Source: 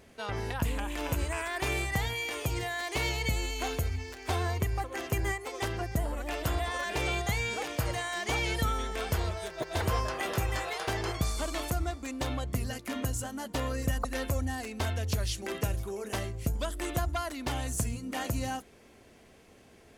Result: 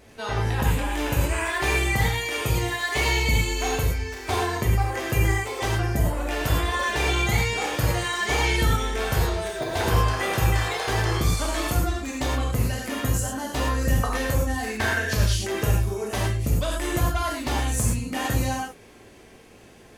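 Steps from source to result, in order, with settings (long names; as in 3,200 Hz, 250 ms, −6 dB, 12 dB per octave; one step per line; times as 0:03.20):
0:14.67–0:15.14: parametric band 1,700 Hz +14.5 dB 0.4 octaves
reverb whose tail is shaped and stops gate 140 ms flat, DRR −3.5 dB
level +3 dB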